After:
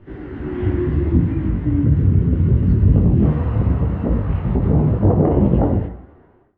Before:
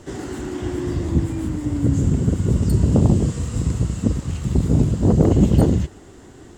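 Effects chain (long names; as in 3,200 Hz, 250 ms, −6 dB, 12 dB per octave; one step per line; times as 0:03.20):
fade-out on the ending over 1.57 s
low-pass filter 2,400 Hz 24 dB per octave
low-shelf EQ 130 Hz +4.5 dB
brickwall limiter −8.5 dBFS, peak gain reduction 6.5 dB
parametric band 750 Hz −5 dB 1.7 octaves, from 0:03.23 +9.5 dB
convolution reverb RT60 0.65 s, pre-delay 32 ms, DRR 7.5 dB
automatic gain control gain up to 11.5 dB
micro pitch shift up and down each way 24 cents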